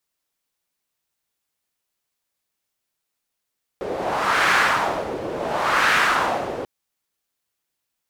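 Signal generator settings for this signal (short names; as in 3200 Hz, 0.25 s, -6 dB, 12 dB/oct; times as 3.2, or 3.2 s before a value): wind-like swept noise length 2.84 s, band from 460 Hz, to 1600 Hz, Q 2, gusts 2, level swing 11 dB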